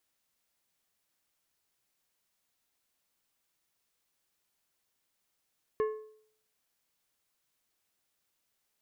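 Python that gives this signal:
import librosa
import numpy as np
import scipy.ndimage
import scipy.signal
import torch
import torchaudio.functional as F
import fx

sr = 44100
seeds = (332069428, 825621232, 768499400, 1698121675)

y = fx.strike_metal(sr, length_s=1.55, level_db=-24, body='plate', hz=432.0, decay_s=0.61, tilt_db=9.5, modes=5)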